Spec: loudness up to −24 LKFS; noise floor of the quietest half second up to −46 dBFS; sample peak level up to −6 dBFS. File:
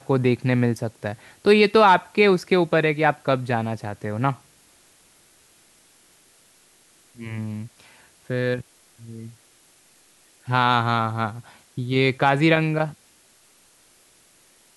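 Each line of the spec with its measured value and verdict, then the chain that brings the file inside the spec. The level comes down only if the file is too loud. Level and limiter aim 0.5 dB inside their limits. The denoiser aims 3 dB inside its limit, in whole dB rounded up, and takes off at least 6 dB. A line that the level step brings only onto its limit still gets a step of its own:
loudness −21.5 LKFS: out of spec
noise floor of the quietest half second −57 dBFS: in spec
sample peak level −4.5 dBFS: out of spec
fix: level −3 dB

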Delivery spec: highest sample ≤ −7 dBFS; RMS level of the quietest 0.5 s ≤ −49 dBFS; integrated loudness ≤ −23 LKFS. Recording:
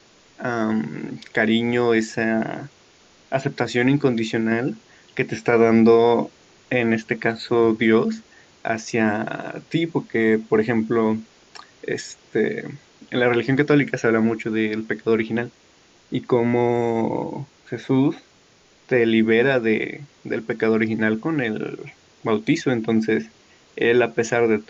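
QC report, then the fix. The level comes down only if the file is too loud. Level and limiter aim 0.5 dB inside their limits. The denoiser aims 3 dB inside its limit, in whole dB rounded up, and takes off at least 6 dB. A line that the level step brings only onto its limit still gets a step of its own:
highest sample −3.5 dBFS: out of spec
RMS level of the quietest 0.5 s −55 dBFS: in spec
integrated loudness −21.0 LKFS: out of spec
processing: level −2.5 dB
brickwall limiter −7.5 dBFS

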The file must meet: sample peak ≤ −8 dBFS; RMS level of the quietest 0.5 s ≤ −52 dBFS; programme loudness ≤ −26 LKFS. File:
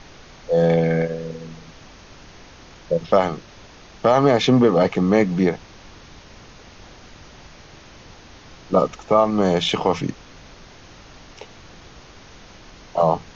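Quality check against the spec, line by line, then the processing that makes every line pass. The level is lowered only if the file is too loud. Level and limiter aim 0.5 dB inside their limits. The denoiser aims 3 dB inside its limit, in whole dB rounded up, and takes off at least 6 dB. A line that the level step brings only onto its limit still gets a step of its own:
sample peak −5.0 dBFS: out of spec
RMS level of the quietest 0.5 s −44 dBFS: out of spec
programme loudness −19.5 LKFS: out of spec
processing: broadband denoise 6 dB, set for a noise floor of −44 dBFS
level −7 dB

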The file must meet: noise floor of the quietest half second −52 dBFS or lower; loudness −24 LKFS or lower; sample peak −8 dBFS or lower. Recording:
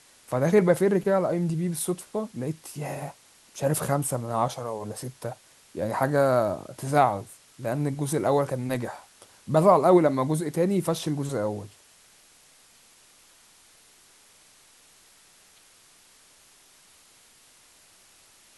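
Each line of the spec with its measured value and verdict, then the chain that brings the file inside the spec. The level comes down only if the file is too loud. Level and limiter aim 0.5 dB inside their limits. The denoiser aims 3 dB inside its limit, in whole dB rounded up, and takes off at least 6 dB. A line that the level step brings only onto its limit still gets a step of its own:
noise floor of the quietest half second −57 dBFS: in spec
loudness −25.5 LKFS: in spec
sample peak −6.5 dBFS: out of spec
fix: brickwall limiter −8.5 dBFS

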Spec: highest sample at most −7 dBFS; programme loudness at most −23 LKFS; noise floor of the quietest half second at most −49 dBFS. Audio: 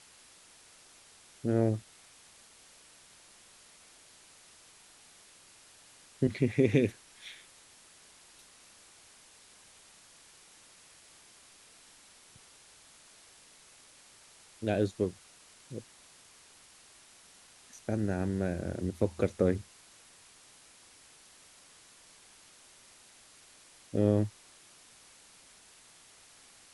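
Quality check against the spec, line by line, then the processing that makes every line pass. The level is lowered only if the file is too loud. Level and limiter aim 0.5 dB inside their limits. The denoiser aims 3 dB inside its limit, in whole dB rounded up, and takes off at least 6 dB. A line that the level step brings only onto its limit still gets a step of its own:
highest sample −11.0 dBFS: in spec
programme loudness −31.5 LKFS: in spec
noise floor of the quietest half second −58 dBFS: in spec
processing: no processing needed

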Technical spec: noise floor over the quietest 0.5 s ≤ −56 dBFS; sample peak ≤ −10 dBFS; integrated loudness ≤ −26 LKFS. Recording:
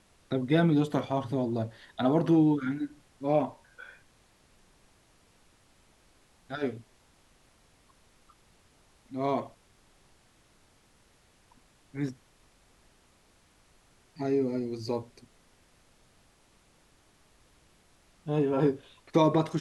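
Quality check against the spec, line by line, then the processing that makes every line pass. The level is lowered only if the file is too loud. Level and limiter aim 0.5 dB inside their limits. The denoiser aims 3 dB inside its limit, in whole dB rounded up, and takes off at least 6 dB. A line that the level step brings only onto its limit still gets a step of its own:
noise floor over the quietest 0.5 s −64 dBFS: in spec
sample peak −11.0 dBFS: in spec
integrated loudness −29.0 LKFS: in spec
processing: no processing needed

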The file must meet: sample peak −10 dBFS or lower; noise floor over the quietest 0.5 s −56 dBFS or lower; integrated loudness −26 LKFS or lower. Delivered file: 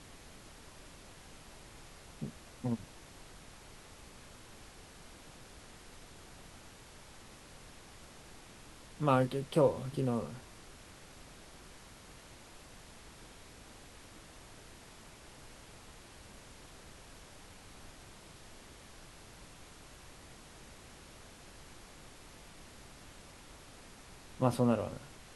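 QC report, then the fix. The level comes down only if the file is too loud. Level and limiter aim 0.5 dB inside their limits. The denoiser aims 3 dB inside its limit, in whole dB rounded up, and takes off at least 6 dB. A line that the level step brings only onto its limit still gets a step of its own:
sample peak −13.5 dBFS: in spec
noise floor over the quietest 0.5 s −54 dBFS: out of spec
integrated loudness −33.5 LKFS: in spec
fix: broadband denoise 6 dB, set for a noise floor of −54 dBFS

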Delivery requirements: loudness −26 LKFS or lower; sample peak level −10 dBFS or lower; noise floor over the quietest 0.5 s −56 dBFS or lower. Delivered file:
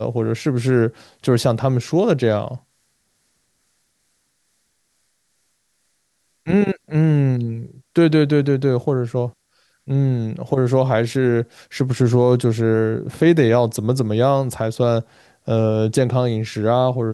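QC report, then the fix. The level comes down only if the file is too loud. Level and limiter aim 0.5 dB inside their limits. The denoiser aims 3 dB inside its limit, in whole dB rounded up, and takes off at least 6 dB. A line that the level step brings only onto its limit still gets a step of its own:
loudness −18.5 LKFS: out of spec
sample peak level −4.0 dBFS: out of spec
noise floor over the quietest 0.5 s −67 dBFS: in spec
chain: level −8 dB

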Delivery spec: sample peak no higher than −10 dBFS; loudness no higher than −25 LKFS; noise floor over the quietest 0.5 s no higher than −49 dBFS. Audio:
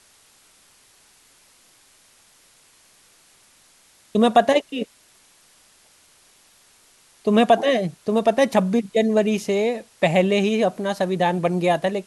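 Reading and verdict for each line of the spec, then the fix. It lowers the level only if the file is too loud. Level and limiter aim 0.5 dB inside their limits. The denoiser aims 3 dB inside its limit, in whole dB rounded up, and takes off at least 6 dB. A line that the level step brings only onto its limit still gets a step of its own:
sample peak −3.5 dBFS: out of spec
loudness −20.5 LKFS: out of spec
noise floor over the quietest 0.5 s −56 dBFS: in spec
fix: level −5 dB
brickwall limiter −10.5 dBFS

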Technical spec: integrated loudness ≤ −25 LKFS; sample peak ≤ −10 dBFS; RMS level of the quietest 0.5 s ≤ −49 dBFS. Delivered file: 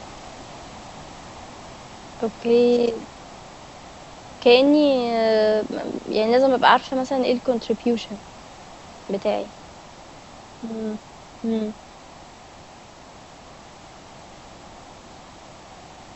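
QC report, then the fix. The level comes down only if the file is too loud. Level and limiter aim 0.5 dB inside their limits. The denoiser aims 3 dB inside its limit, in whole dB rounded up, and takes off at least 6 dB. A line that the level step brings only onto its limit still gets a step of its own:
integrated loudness −20.5 LKFS: out of spec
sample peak −1.5 dBFS: out of spec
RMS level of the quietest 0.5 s −44 dBFS: out of spec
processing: broadband denoise 6 dB, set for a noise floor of −44 dBFS
level −5 dB
brickwall limiter −10.5 dBFS

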